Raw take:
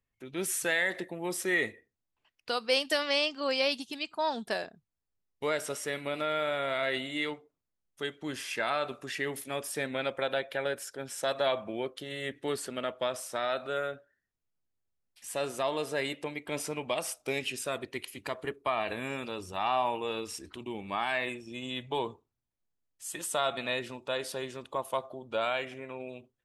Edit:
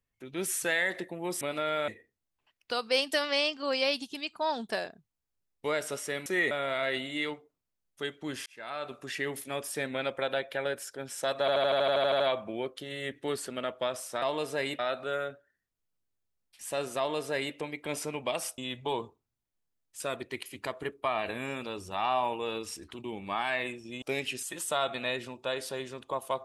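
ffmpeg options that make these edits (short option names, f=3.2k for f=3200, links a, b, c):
-filter_complex "[0:a]asplit=22[a][b][c][d][e][f][g][h][i][j][k][l][m][n][o][p][q][r][s][t][u][v];[a]atrim=end=1.412[w];[b]atrim=start=6.038:end=6.512[x];[c]atrim=start=1.658:end=6.042[y];[d]atrim=start=1.408:end=1.662[z];[e]atrim=start=6.508:end=8.46,asetpts=PTS-STARTPTS,afade=t=out:st=1.948:d=0.004:c=hsin[aa];[f]atrim=start=8.46:end=11.482,asetpts=PTS-STARTPTS,afade=t=in:d=0.64[ab];[g]atrim=start=11.398:end=11.482[ac];[h]atrim=start=11.398:end=11.482[ad];[i]atrim=start=11.398:end=11.482[ae];[j]atrim=start=11.398:end=11.482[af];[k]atrim=start=11.398:end=11.482[ag];[l]atrim=start=11.398:end=11.482[ah];[m]atrim=start=11.398:end=11.482[ai];[n]atrim=start=11.398:end=11.482[aj];[o]atrim=start=11.398:end=11.482[ak];[p]atrim=start=11.398:end=13.422[al];[q]atrim=start=15.608:end=16.182[am];[r]atrim=start=13.418:end=17.212[an];[s]atrim=start=21.638:end=23.062[ao];[t]atrim=start=17.618:end=21.642[ap];[u]atrim=start=17.208:end=17.622[aq];[v]atrim=start=23.058[ar];[w][x]acrossfade=d=0.004:c1=hsin:c2=hsin[as];[as][y]acrossfade=d=0.004:c1=hsin:c2=hsin[at];[at][z]acrossfade=d=0.004:c1=hsin:c2=hsin[au];[aa][ab]concat=n=2:v=0:a=1[av];[au][av]acrossfade=d=0.004:c1=hsin:c2=hsin[aw];[aw][ac]acrossfade=d=0.004:c1=hsin:c2=hsin[ax];[ax][ad]acrossfade=d=0.004:c1=hsin:c2=hsin[ay];[ay][ae]acrossfade=d=0.004:c1=hsin:c2=hsin[az];[az][af]acrossfade=d=0.004:c1=hsin:c2=hsin[ba];[ba][ag]acrossfade=d=0.004:c1=hsin:c2=hsin[bb];[bb][ah]acrossfade=d=0.004:c1=hsin:c2=hsin[bc];[bc][ai]acrossfade=d=0.004:c1=hsin:c2=hsin[bd];[bd][aj]acrossfade=d=0.004:c1=hsin:c2=hsin[be];[be][ak]acrossfade=d=0.004:c1=hsin:c2=hsin[bf];[bf][al]acrossfade=d=0.004:c1=hsin:c2=hsin[bg];[bg][am]acrossfade=d=0.004:c1=hsin:c2=hsin[bh];[bh][an]acrossfade=d=0.004:c1=hsin:c2=hsin[bi];[bi][ao]acrossfade=d=0.004:c1=hsin:c2=hsin[bj];[bj][ap]acrossfade=d=0.004:c1=hsin:c2=hsin[bk];[bk][aq]acrossfade=d=0.004:c1=hsin:c2=hsin[bl];[bl][ar]acrossfade=d=0.004:c1=hsin:c2=hsin"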